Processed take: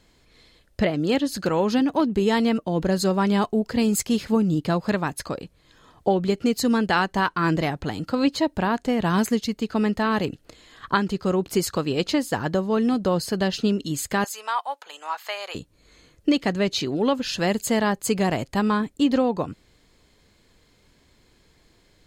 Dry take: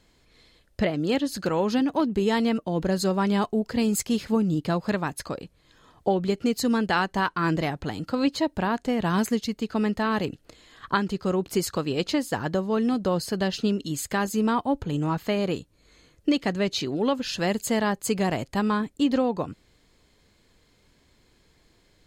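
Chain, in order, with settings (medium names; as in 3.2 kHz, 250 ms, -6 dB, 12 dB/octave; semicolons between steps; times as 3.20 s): 14.24–15.55 s: high-pass 750 Hz 24 dB/octave; trim +2.5 dB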